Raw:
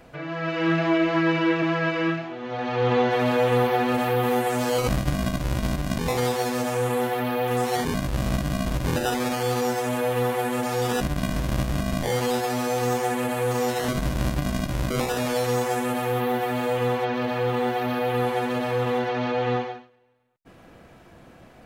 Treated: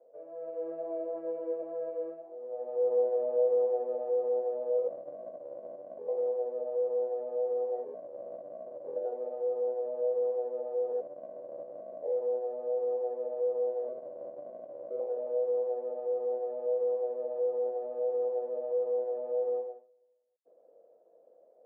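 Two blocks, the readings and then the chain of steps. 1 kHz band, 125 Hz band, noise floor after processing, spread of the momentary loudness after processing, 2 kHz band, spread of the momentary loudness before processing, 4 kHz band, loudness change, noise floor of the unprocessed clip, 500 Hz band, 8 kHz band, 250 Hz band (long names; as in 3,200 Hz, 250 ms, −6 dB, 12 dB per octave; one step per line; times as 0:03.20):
−19.0 dB, below −40 dB, −62 dBFS, 14 LU, below −40 dB, 5 LU, below −40 dB, −8.0 dB, −50 dBFS, −4.0 dB, below −40 dB, below −25 dB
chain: flat-topped band-pass 530 Hz, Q 3.2
level −3 dB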